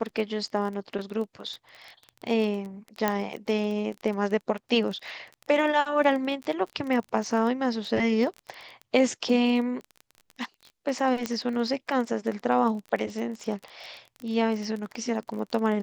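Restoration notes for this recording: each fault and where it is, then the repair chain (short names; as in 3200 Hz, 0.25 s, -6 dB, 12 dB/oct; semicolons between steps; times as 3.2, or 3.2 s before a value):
crackle 22/s -32 dBFS
3.08 pop -10 dBFS
11.26 pop -13 dBFS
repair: de-click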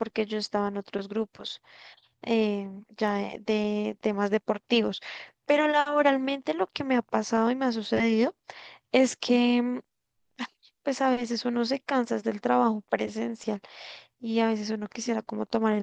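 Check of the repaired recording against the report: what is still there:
3.08 pop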